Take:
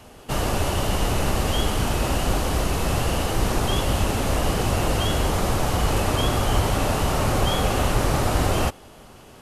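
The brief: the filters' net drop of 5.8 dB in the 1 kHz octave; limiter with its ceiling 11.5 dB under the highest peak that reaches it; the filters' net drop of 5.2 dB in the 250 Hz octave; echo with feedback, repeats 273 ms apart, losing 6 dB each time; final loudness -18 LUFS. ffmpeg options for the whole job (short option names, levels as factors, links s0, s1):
-af "equalizer=f=250:t=o:g=-7,equalizer=f=1000:t=o:g=-7.5,alimiter=limit=0.0944:level=0:latency=1,aecho=1:1:273|546|819|1092|1365|1638:0.501|0.251|0.125|0.0626|0.0313|0.0157,volume=3.76"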